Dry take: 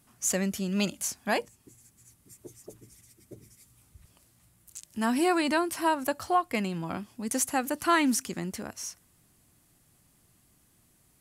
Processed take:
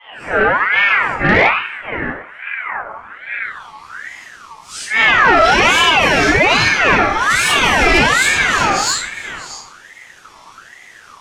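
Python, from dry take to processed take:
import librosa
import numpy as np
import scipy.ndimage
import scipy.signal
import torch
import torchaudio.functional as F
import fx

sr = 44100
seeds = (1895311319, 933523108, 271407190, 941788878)

p1 = fx.phase_scramble(x, sr, seeds[0], window_ms=200)
p2 = fx.over_compress(p1, sr, threshold_db=-32.0, ratio=-0.5)
p3 = p1 + (p2 * 10.0 ** (3.0 / 20.0))
p4 = fx.riaa(p3, sr, side='playback', at=(4.86, 5.43))
p5 = fx.filter_sweep_lowpass(p4, sr, from_hz=960.0, to_hz=4800.0, start_s=3.07, end_s=3.94, q=2.4)
p6 = fx.peak_eq(p5, sr, hz=1200.0, db=5.0, octaves=1.2)
p7 = p6 + fx.echo_single(p6, sr, ms=633, db=-14.5, dry=0)
p8 = fx.room_shoebox(p7, sr, seeds[1], volume_m3=81.0, walls='mixed', distance_m=3.9)
p9 = 10.0 ** (-3.5 / 20.0) * np.tanh(p8 / 10.0 ** (-3.5 / 20.0))
p10 = fx.notch(p9, sr, hz=2500.0, q=7.3)
y = fx.ring_lfo(p10, sr, carrier_hz=1500.0, swing_pct=35, hz=1.2)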